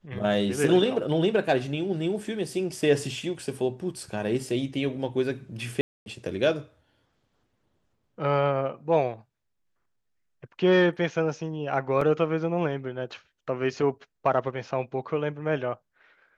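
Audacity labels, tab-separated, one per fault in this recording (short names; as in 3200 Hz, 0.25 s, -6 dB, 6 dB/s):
5.810000	6.060000	gap 0.251 s
12.010000	12.010000	gap 4 ms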